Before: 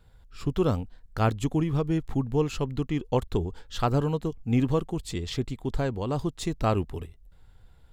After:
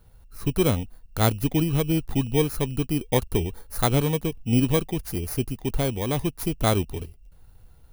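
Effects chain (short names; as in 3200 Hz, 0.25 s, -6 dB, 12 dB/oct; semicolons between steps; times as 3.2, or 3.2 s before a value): FFT order left unsorted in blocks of 16 samples; gain +3 dB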